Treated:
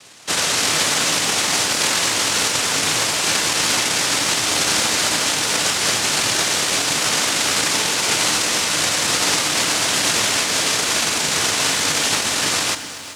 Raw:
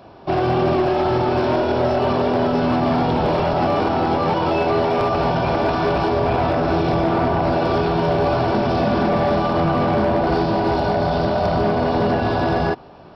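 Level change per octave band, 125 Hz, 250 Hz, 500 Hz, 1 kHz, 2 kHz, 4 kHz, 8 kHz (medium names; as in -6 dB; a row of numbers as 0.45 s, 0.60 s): -12.0 dB, -10.0 dB, -10.5 dB, -5.5 dB, +8.5 dB, +16.5 dB, no reading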